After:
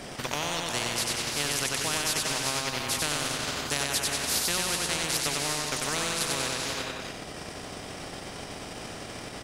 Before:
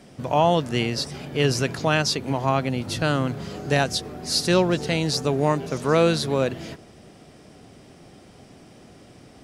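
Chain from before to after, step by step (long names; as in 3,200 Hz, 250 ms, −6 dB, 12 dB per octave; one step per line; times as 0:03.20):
reverb whose tail is shaped and stops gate 430 ms rising, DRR 7.5 dB
transient designer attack +6 dB, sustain −9 dB
on a send: repeating echo 94 ms, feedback 42%, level −5 dB
on the sum: every bin compressed towards the loudest bin 4 to 1
level −8 dB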